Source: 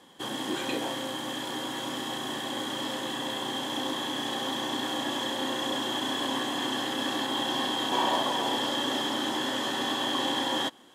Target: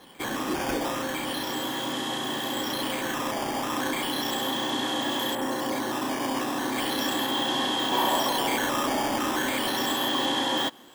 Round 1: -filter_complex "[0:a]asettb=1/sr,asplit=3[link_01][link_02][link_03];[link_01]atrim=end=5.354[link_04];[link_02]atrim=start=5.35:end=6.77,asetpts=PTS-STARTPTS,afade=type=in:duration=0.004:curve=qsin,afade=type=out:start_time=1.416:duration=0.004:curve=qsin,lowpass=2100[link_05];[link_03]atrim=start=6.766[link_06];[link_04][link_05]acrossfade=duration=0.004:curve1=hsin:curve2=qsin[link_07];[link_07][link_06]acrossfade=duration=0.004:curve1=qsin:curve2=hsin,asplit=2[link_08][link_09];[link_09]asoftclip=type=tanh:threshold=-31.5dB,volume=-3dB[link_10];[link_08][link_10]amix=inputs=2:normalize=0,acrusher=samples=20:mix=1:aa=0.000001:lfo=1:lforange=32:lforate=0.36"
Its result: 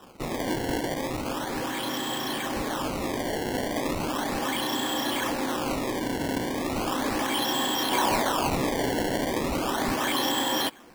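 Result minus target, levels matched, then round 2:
sample-and-hold swept by an LFO: distortion +8 dB
-filter_complex "[0:a]asettb=1/sr,asplit=3[link_01][link_02][link_03];[link_01]atrim=end=5.354[link_04];[link_02]atrim=start=5.35:end=6.77,asetpts=PTS-STARTPTS,afade=type=in:duration=0.004:curve=qsin,afade=type=out:start_time=1.416:duration=0.004:curve=qsin,lowpass=2100[link_05];[link_03]atrim=start=6.766[link_06];[link_04][link_05]acrossfade=duration=0.004:curve1=hsin:curve2=qsin[link_07];[link_07][link_06]acrossfade=duration=0.004:curve1=qsin:curve2=hsin,asplit=2[link_08][link_09];[link_09]asoftclip=type=tanh:threshold=-31.5dB,volume=-3dB[link_10];[link_08][link_10]amix=inputs=2:normalize=0,acrusher=samples=6:mix=1:aa=0.000001:lfo=1:lforange=9.6:lforate=0.36"

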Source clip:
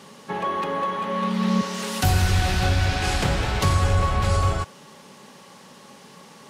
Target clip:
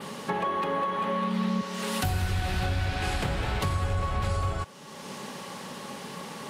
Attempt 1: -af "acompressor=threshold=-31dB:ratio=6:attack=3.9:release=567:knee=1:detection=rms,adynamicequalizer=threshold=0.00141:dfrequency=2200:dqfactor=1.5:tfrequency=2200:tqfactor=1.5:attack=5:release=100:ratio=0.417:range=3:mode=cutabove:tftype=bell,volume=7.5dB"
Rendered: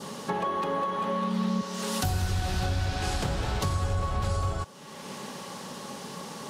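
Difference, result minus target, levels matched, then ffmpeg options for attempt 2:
8,000 Hz band +3.0 dB
-af "acompressor=threshold=-31dB:ratio=6:attack=3.9:release=567:knee=1:detection=rms,adynamicequalizer=threshold=0.00141:dfrequency=6000:dqfactor=1.5:tfrequency=6000:tqfactor=1.5:attack=5:release=100:ratio=0.417:range=3:mode=cutabove:tftype=bell,volume=7.5dB"

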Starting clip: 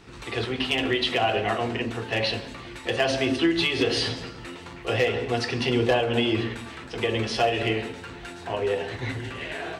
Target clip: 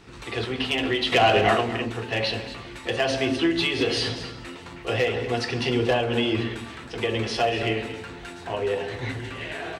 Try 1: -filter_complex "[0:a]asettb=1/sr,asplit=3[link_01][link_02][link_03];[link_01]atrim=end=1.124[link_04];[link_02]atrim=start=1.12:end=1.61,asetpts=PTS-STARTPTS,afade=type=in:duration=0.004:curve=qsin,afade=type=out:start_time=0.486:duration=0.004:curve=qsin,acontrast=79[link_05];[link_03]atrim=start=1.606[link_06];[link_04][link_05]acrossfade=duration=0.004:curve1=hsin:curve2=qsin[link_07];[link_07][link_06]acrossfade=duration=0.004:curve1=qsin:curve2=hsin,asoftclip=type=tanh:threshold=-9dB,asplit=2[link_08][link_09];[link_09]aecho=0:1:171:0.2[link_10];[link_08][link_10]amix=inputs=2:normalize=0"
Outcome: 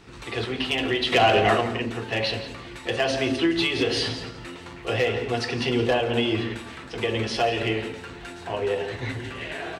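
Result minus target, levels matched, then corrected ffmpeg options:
echo 62 ms early
-filter_complex "[0:a]asettb=1/sr,asplit=3[link_01][link_02][link_03];[link_01]atrim=end=1.124[link_04];[link_02]atrim=start=1.12:end=1.61,asetpts=PTS-STARTPTS,afade=type=in:duration=0.004:curve=qsin,afade=type=out:start_time=0.486:duration=0.004:curve=qsin,acontrast=79[link_05];[link_03]atrim=start=1.606[link_06];[link_04][link_05]acrossfade=duration=0.004:curve1=hsin:curve2=qsin[link_07];[link_07][link_06]acrossfade=duration=0.004:curve1=qsin:curve2=hsin,asoftclip=type=tanh:threshold=-9dB,asplit=2[link_08][link_09];[link_09]aecho=0:1:233:0.2[link_10];[link_08][link_10]amix=inputs=2:normalize=0"

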